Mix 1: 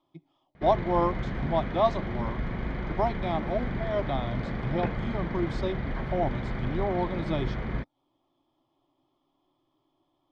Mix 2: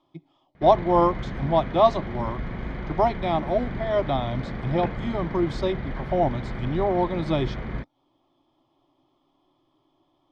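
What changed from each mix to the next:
speech +6.0 dB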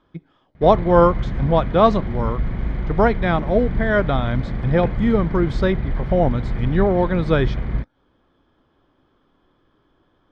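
speech: remove fixed phaser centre 310 Hz, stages 8; master: add low shelf 150 Hz +12 dB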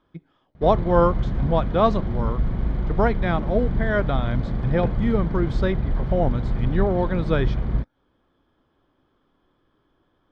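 speech -4.5 dB; background: add bell 2100 Hz -8.5 dB 0.83 oct

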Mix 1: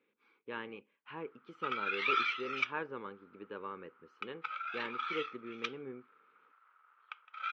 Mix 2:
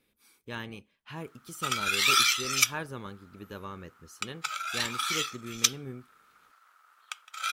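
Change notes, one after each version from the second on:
background +3.5 dB; master: remove speaker cabinet 330–2500 Hz, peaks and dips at 460 Hz +4 dB, 670 Hz -10 dB, 1800 Hz -5 dB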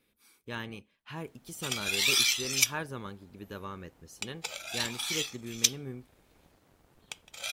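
background: remove resonant high-pass 1300 Hz, resonance Q 10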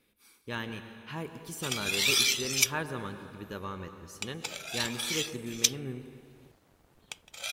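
reverb: on, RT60 2.1 s

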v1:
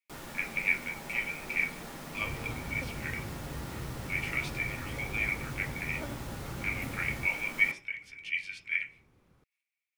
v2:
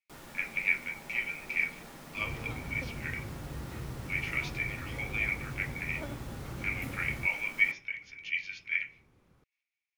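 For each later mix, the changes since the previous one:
speech: add brick-wall FIR low-pass 7000 Hz; first sound -5.0 dB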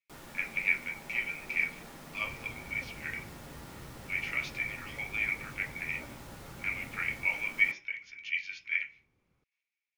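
second sound -10.0 dB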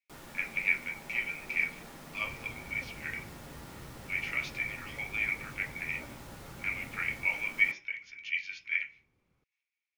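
none

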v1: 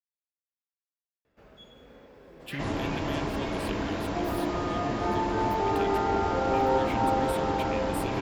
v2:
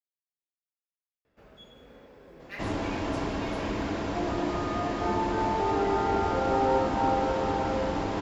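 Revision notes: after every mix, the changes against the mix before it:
speech: muted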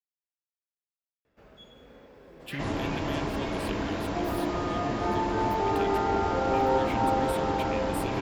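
speech: unmuted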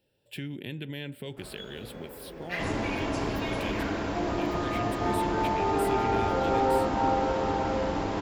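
speech: entry -2.15 s; first sound +7.0 dB

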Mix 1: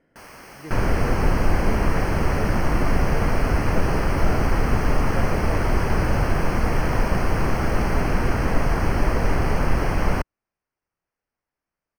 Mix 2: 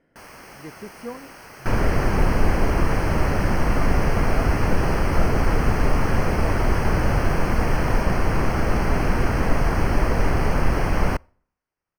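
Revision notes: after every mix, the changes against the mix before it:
second sound: entry +0.95 s; reverb: on, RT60 0.60 s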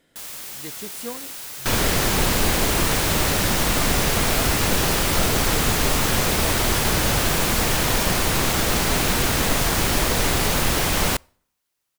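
first sound -4.0 dB; second sound: add low shelf 74 Hz -7 dB; master: remove running mean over 12 samples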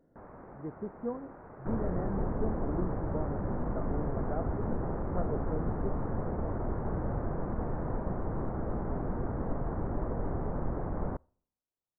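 first sound: send on; second sound -9.5 dB; master: add Gaussian blur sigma 8.6 samples

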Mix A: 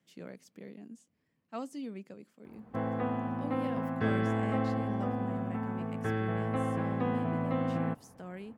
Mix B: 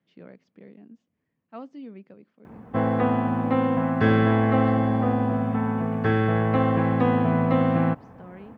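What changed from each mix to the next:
speech: add Gaussian blur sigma 2.4 samples; background +10.5 dB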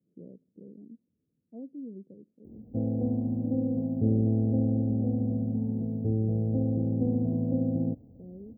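background: add fifteen-band EQ 160 Hz -9 dB, 400 Hz -10 dB, 1600 Hz -11 dB; master: add inverse Chebyshev band-stop 1100–8800 Hz, stop band 50 dB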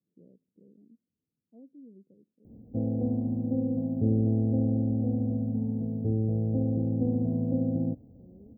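speech -9.5 dB

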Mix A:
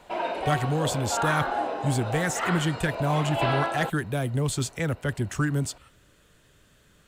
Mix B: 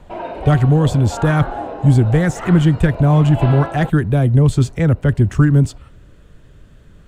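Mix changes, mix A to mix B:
speech +6.5 dB; master: add tilt -3 dB/oct

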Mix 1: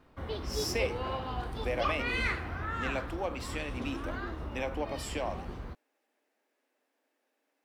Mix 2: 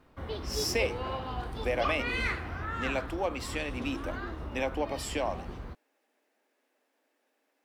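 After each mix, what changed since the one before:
speech +4.5 dB; reverb: off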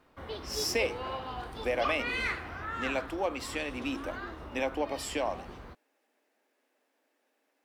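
background: add low shelf 260 Hz -8.5 dB

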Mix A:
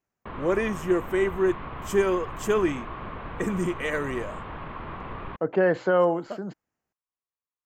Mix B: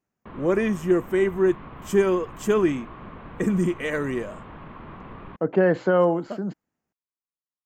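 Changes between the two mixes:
background -6.0 dB; master: add bell 210 Hz +6.5 dB 1.5 oct

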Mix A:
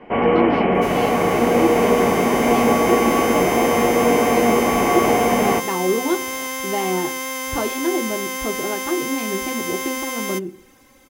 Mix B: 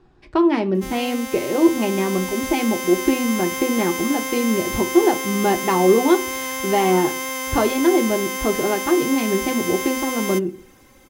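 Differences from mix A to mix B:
speech +5.5 dB; first sound: muted

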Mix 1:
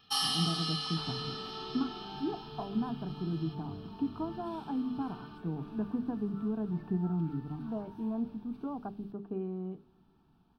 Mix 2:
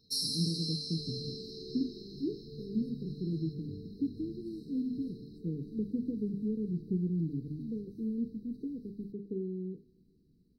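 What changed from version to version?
master: add brick-wall FIR band-stop 530–3800 Hz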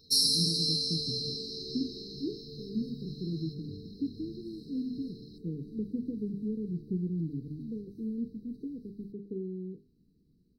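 first sound +8.5 dB; reverb: off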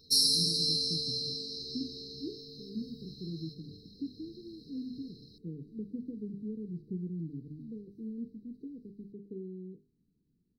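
speech -5.0 dB; second sound -10.5 dB

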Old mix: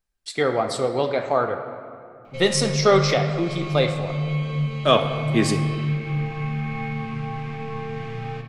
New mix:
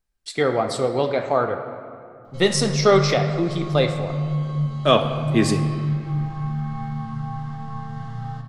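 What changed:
background: add fixed phaser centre 1000 Hz, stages 4; master: add low shelf 380 Hz +3 dB

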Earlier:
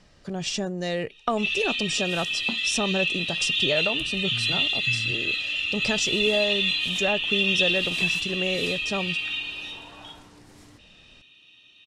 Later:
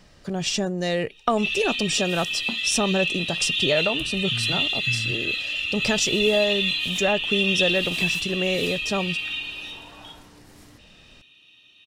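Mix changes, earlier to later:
speech +3.5 dB; master: remove LPF 9600 Hz 12 dB/oct

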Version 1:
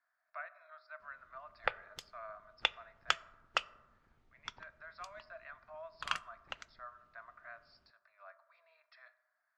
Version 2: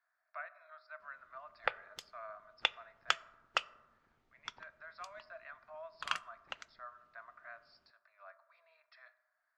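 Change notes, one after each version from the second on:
background: add low shelf 130 Hz -10.5 dB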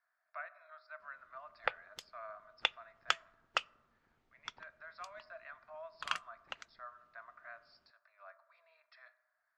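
background: send -8.0 dB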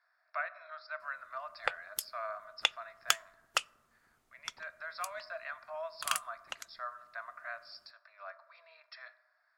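speech +7.5 dB; master: remove air absorption 180 m

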